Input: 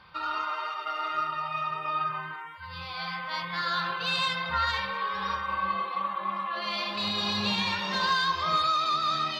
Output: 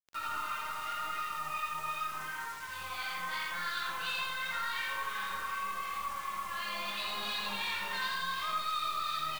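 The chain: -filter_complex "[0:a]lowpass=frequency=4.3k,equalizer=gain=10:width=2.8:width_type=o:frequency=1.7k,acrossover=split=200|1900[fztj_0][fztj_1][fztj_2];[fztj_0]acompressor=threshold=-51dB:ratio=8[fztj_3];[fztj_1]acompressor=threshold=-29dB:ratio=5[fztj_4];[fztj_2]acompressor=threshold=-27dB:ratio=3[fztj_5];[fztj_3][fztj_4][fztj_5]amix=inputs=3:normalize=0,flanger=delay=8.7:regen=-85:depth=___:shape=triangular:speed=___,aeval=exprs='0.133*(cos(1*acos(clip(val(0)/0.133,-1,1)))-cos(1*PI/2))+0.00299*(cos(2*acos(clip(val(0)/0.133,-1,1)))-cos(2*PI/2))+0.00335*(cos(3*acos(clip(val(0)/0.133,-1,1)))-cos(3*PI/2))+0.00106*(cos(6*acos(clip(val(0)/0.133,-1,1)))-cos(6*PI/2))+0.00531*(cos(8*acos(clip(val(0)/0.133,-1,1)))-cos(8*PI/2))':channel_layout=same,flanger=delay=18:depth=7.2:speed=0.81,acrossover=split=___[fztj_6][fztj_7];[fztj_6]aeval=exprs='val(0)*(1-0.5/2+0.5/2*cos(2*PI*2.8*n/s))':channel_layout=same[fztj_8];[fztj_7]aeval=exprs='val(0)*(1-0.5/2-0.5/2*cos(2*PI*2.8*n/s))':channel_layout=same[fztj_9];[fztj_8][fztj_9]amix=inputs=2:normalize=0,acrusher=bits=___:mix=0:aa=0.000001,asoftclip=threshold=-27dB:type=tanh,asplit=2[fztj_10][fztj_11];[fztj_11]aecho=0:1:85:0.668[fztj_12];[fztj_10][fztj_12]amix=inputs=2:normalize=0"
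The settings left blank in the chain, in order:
8.6, 0.35, 1200, 7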